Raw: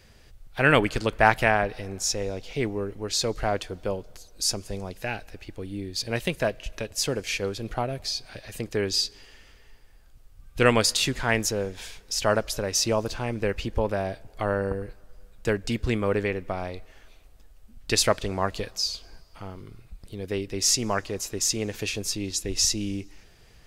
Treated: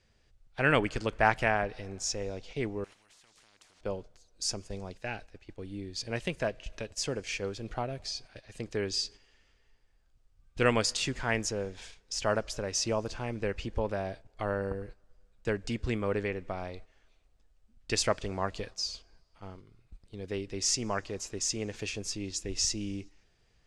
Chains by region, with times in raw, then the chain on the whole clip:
2.84–3.81 compressor, threshold -34 dBFS + spectral compressor 10:1
whole clip: gate -39 dBFS, range -8 dB; LPF 8500 Hz 24 dB/oct; dynamic EQ 3900 Hz, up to -5 dB, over -47 dBFS, Q 4.3; gain -6 dB

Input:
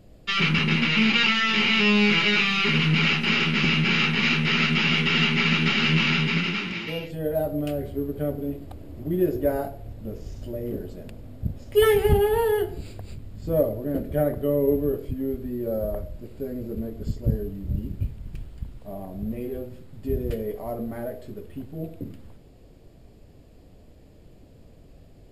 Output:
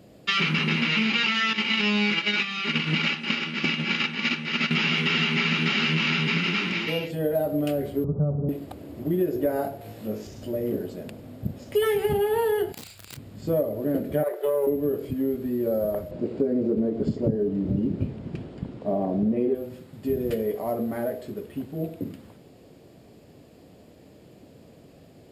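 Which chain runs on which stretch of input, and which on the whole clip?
1.53–4.71 LPF 9600 Hz 24 dB/oct + gate -21 dBFS, range -12 dB + comb 3.5 ms, depth 33%
8.04–8.49 steep low-pass 1300 Hz 72 dB/oct + resonant low shelf 220 Hz +8 dB, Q 3
9.81–10.27 low shelf 130 Hz -10.5 dB + flutter echo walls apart 3.2 m, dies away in 0.24 s + mismatched tape noise reduction encoder only
12.72–13.17 passive tone stack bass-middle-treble 10-0-10 + wrapped overs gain 38.5 dB + doubler 32 ms -6.5 dB
14.23–14.67 Chebyshev high-pass 360 Hz, order 6 + Doppler distortion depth 0.11 ms
16.11–19.55 LPF 5400 Hz + bell 350 Hz +11 dB 2.9 oct
whole clip: HPF 150 Hz; compressor, threshold -25 dBFS; gain +4.5 dB

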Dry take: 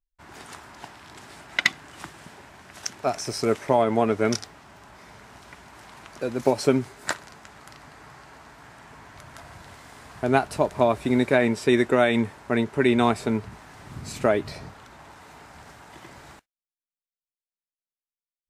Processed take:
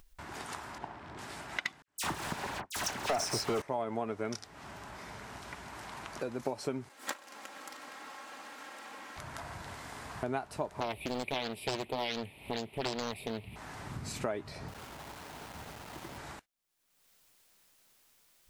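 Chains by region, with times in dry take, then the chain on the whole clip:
0.78–1.19 LPF 1000 Hz 6 dB/oct + flutter echo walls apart 11.8 m, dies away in 0.39 s
1.82–3.62 gate with hold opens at -35 dBFS, closes at -44 dBFS + sample leveller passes 5 + dispersion lows, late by 59 ms, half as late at 2500 Hz
6.89–9.17 minimum comb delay 3.7 ms + HPF 310 Hz
10.8–13.56 EQ curve 140 Hz 0 dB, 730 Hz -5 dB, 1600 Hz -20 dB, 2400 Hz +12 dB, 3600 Hz +5 dB, 6400 Hz -21 dB, 10000 Hz +10 dB + Doppler distortion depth 0.9 ms
14.68–16.18 LPF 1100 Hz 6 dB/oct + requantised 8-bit, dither none
whole clip: compressor 3:1, threshold -38 dBFS; dynamic EQ 930 Hz, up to +4 dB, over -48 dBFS, Q 1.4; upward compressor, threshold -42 dBFS

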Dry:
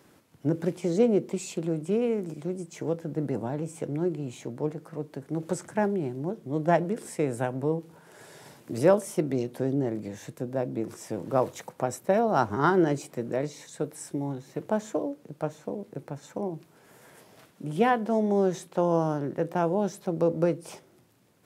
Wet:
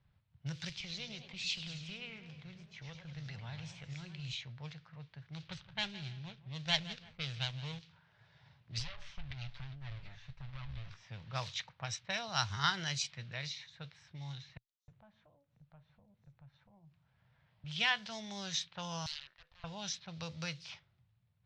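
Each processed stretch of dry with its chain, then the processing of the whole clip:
0.69–4.33 compressor 2:1, threshold -29 dBFS + warbling echo 0.104 s, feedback 58%, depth 205 cents, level -9 dB
5.36–7.79 median filter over 25 samples + feedback echo 0.167 s, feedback 37%, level -16 dB
8.79–10.9 minimum comb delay 7 ms + compressor 20:1, threshold -31 dBFS
14.57–17.64 notch 420 Hz, Q 5.7 + compressor 2:1, threshold -50 dBFS + bands offset in time highs, lows 0.31 s, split 5900 Hz
19.06–19.64 HPF 1100 Hz + compressor 8:1, threshold -39 dBFS + wrapped overs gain 41 dB
whole clip: EQ curve 120 Hz 0 dB, 430 Hz -19 dB, 1300 Hz -10 dB, 3900 Hz +7 dB, 5900 Hz 0 dB, 11000 Hz -29 dB; low-pass opened by the level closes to 560 Hz, open at -31.5 dBFS; passive tone stack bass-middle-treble 10-0-10; gain +9.5 dB

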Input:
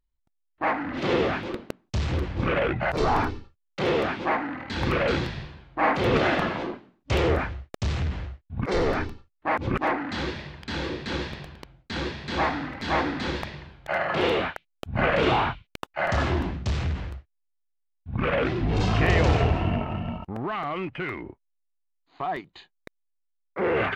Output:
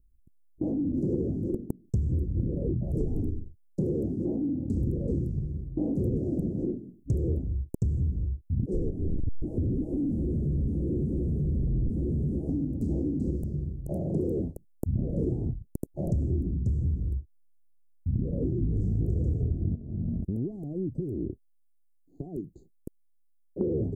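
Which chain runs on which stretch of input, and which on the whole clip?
8.9–12.49 infinite clipping + LPF 1700 Hz
19.75–23.61 compressor 10:1, threshold -32 dBFS + low shelf 420 Hz -4 dB
whole clip: inverse Chebyshev band-stop 1200–3200 Hz, stop band 70 dB; low shelf 330 Hz +9.5 dB; compressor 6:1, threshold -32 dBFS; gain +6 dB

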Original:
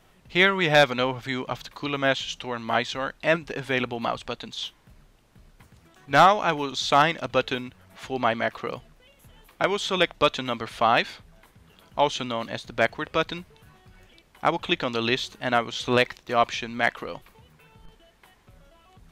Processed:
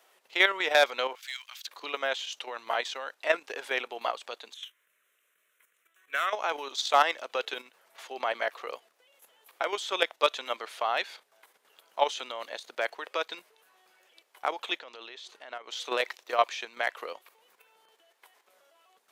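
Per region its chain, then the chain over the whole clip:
1.15–1.67 Bessel high-pass 2500 Hz, order 4 + sample leveller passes 1
4.54–6.33 bell 270 Hz -12.5 dB 1.8 oct + fixed phaser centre 2000 Hz, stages 4
14.79–15.71 air absorption 54 m + compressor 4:1, threshold -34 dBFS
whole clip: HPF 430 Hz 24 dB/oct; high shelf 8000 Hz +6.5 dB; level quantiser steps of 9 dB; gain -1 dB

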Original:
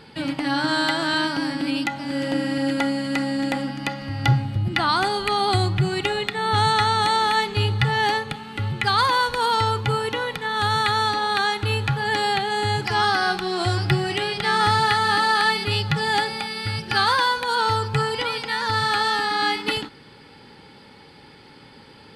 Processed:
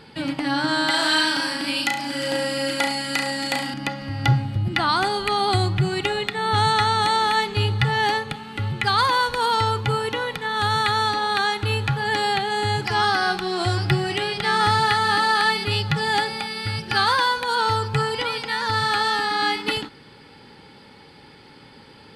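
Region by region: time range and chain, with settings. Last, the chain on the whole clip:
0.9–3.74 tilt +2.5 dB/oct + flutter echo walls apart 6 m, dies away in 0.47 s
whole clip: dry

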